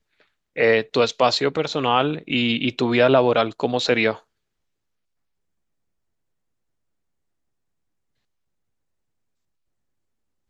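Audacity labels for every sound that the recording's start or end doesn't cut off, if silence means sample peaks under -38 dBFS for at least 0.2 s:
0.560000	4.190000	sound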